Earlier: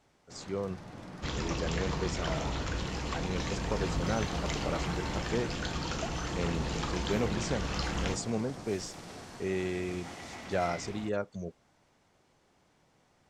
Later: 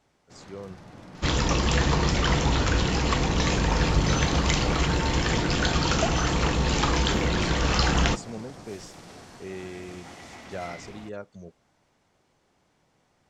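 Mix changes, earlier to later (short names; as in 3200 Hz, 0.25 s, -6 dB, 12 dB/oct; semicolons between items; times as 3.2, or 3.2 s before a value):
speech -5.0 dB; second sound +11.5 dB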